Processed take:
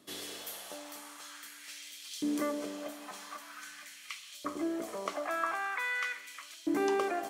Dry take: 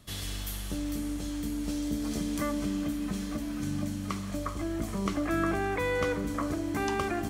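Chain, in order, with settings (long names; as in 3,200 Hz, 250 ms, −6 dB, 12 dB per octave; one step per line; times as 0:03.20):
auto-filter high-pass saw up 0.45 Hz 300–3,500 Hz
level −3.5 dB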